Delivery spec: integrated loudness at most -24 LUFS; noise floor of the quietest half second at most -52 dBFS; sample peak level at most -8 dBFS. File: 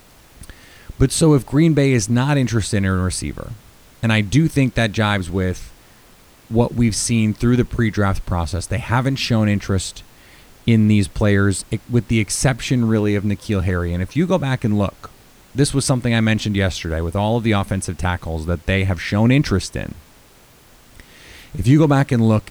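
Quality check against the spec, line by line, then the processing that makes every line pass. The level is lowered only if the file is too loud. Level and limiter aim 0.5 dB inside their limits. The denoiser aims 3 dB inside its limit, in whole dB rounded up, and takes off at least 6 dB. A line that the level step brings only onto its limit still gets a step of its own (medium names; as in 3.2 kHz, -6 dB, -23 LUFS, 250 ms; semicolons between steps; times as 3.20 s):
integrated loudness -18.5 LUFS: fail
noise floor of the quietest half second -48 dBFS: fail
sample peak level -3.0 dBFS: fail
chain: trim -6 dB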